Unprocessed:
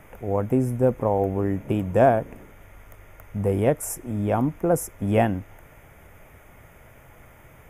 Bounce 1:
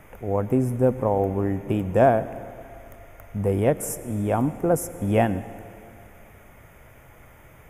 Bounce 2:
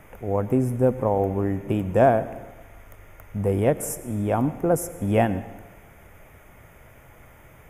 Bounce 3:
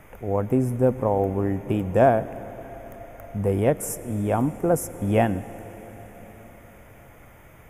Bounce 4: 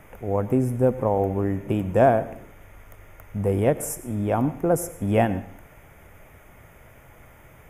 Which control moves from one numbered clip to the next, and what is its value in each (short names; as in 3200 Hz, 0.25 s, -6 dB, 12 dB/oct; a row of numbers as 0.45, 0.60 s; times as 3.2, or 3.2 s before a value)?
plate-style reverb, RT60: 2.5, 1.2, 5.3, 0.55 s